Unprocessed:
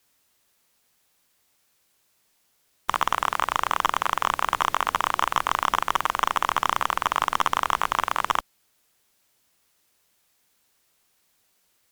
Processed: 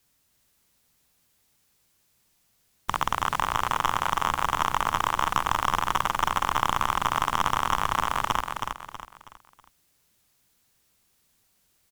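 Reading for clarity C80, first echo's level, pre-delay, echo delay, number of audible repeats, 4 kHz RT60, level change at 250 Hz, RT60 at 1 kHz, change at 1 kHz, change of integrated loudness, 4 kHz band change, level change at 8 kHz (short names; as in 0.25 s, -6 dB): none, -5.0 dB, none, 0.322 s, 4, none, +3.0 dB, none, -1.0 dB, -1.5 dB, -1.5 dB, -0.5 dB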